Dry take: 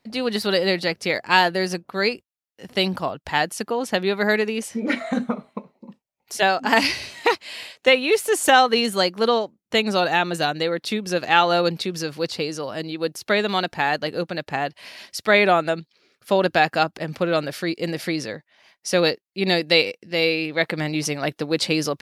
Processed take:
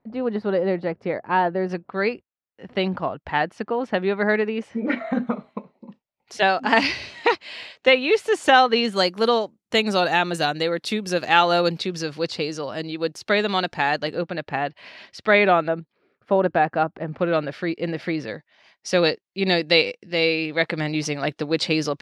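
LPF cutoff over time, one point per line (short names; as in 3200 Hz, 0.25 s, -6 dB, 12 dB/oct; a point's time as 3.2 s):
1100 Hz
from 1.69 s 2200 Hz
from 5.27 s 4300 Hz
from 8.96 s 11000 Hz
from 11.76 s 6500 Hz
from 14.15 s 3200 Hz
from 15.68 s 1400 Hz
from 17.19 s 2700 Hz
from 18.28 s 5600 Hz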